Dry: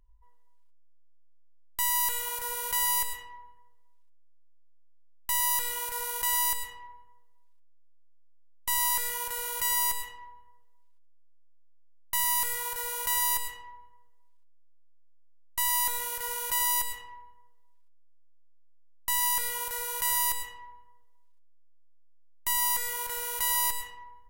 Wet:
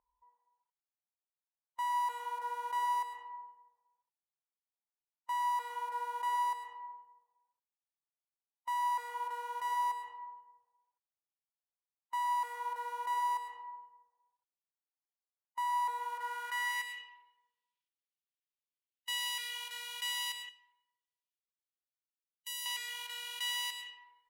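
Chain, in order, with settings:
band-pass filter sweep 860 Hz → 3,000 Hz, 0:16.00–0:17.17
harmonic and percussive parts rebalanced harmonic +6 dB
0:20.49–0:22.66: first-order pre-emphasis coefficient 0.8
level −2.5 dB

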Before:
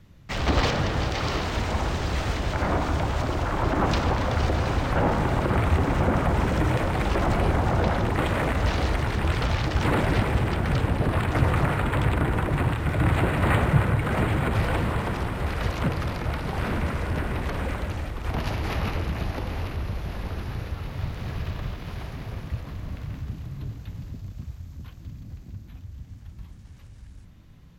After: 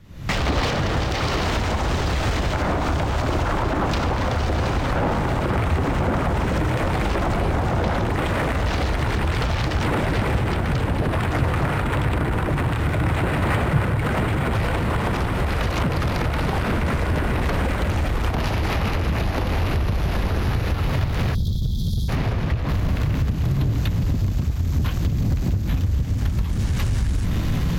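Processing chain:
camcorder AGC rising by 69 dB per second
0:21.34–0:22.09: time-frequency box erased 250–3,200 Hz
0:22.15–0:22.68: high-shelf EQ 9,800 Hz → 6,200 Hz −11.5 dB
in parallel at −9.5 dB: wave folding −24.5 dBFS

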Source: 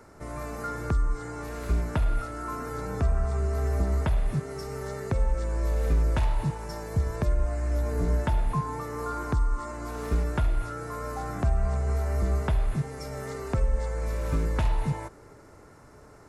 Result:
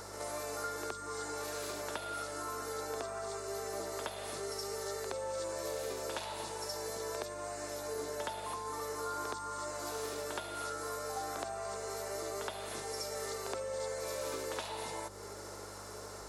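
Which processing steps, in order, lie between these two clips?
high-pass filter 370 Hz 24 dB per octave
high shelf with overshoot 2,900 Hz +7 dB, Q 1.5
downward compressor 3 to 1, threshold −47 dBFS, peak gain reduction 14 dB
mains hum 50 Hz, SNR 13 dB
backwards echo 70 ms −6 dB
level +6 dB

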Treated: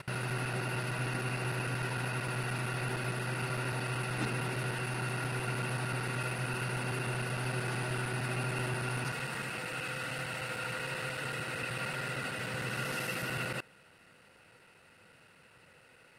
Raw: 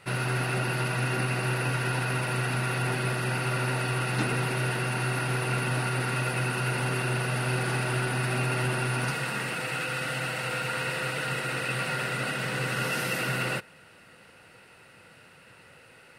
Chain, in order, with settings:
reversed piece by piece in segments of 76 ms
level −6.5 dB

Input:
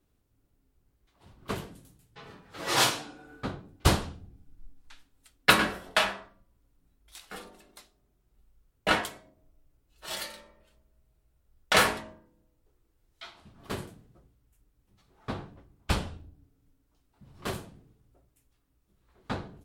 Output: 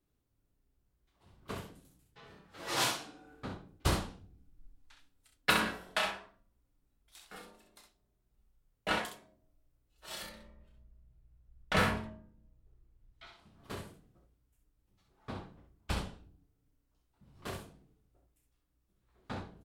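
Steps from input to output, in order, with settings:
0:10.22–0:13.27: bass and treble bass +12 dB, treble −8 dB
ambience of single reflections 32 ms −7.5 dB, 65 ms −6 dB
level −8.5 dB

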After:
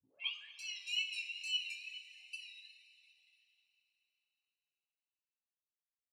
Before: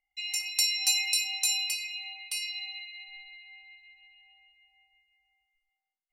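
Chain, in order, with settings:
turntable start at the beginning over 0.61 s
noise reduction from a noise print of the clip's start 20 dB
in parallel at −10.5 dB: gain into a clipping stage and back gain 22 dB
on the sum: comb filter 7.3 ms, depth 50%
tape wow and flutter 93 cents
output level in coarse steps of 14 dB
envelope filter 380–2,800 Hz, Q 9.1, up, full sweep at −41 dBFS
on a send: echo with shifted repeats 235 ms, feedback 58%, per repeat −150 Hz, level −23 dB
on the sum: coupled-rooms reverb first 0.23 s, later 3.5 s, from −19 dB, DRR −2 dB
level −1.5 dB

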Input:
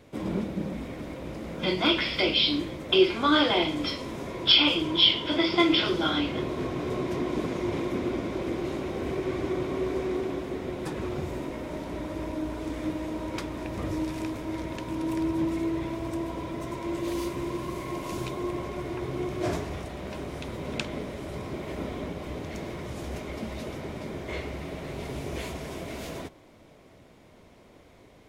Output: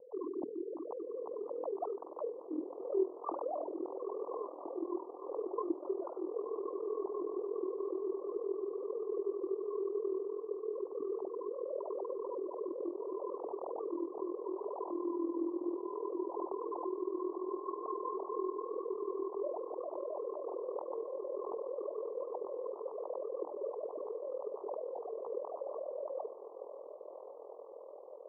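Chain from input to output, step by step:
three sine waves on the formant tracks
parametric band 310 Hz +2.5 dB
downward compressor 3 to 1, threshold −43 dBFS, peak gain reduction 28 dB
Butterworth low-pass 1,100 Hz 96 dB per octave
spectral tilt +2.5 dB per octave
mains-hum notches 60/120/180/240/300/360 Hz
feedback delay with all-pass diffusion 1,117 ms, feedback 69%, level −11 dB
amplitude modulation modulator 41 Hz, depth 55%
level +10 dB

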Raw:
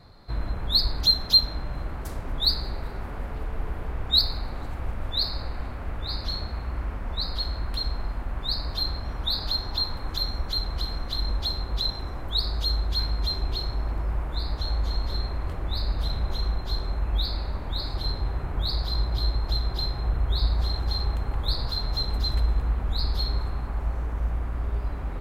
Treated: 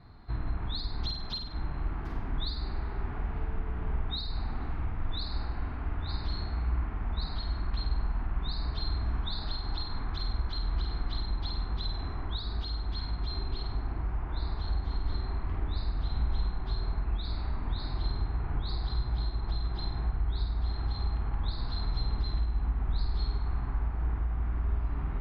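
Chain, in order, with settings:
parametric band 540 Hz −13 dB 0.36 octaves
downward compressor, threshold −25 dBFS, peak gain reduction 12 dB
high-frequency loss of the air 300 metres
flutter between parallel walls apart 8.6 metres, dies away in 0.56 s
level −1.5 dB

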